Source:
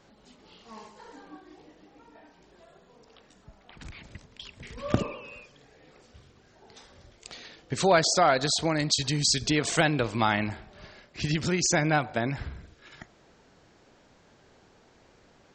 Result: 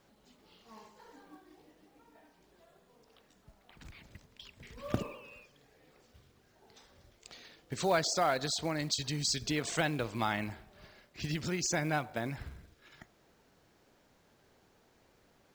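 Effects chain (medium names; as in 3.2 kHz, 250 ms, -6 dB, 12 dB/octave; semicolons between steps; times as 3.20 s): companded quantiser 6-bit; trim -8 dB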